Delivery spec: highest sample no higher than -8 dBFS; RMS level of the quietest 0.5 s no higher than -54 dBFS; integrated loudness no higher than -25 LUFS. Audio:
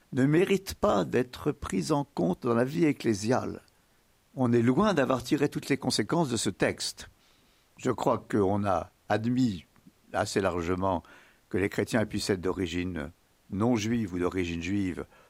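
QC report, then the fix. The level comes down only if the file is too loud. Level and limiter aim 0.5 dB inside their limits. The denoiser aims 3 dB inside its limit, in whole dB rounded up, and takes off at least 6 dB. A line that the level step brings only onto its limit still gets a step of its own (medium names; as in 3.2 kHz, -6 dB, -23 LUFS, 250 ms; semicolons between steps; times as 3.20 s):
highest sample -9.5 dBFS: pass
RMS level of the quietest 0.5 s -66 dBFS: pass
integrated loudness -28.5 LUFS: pass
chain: none needed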